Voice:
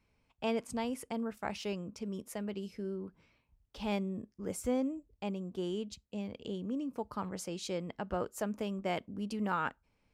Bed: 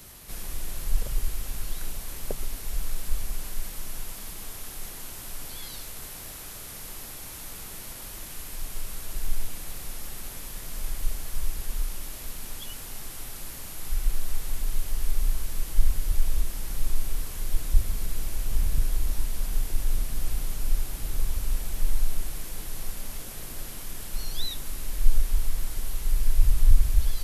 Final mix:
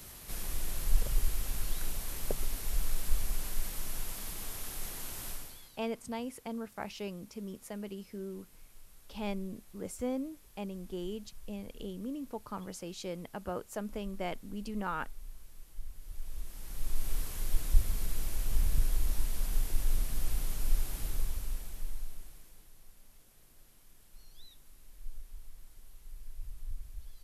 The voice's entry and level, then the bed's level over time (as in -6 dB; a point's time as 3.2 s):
5.35 s, -2.5 dB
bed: 5.3 s -2 dB
5.8 s -22 dB
15.93 s -22 dB
17.13 s -4 dB
21.02 s -4 dB
22.77 s -23.5 dB